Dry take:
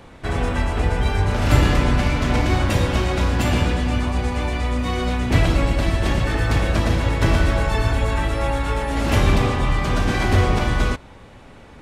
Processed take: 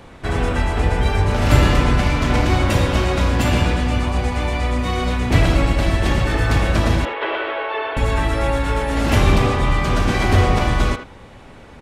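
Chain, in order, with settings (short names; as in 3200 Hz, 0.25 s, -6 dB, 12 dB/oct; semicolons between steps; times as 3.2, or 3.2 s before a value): 7.05–7.97 elliptic band-pass 400–3200 Hz, stop band 40 dB; speakerphone echo 80 ms, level -8 dB; gain +2 dB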